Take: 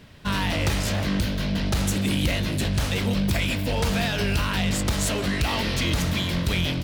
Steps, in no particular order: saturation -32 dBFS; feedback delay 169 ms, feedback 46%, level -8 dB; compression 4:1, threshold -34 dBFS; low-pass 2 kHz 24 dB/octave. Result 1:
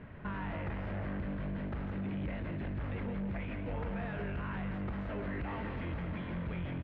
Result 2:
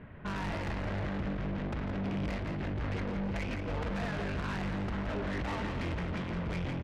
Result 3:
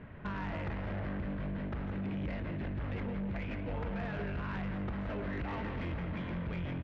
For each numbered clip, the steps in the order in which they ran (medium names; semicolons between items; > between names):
compression > feedback delay > saturation > low-pass; low-pass > saturation > compression > feedback delay; low-pass > compression > feedback delay > saturation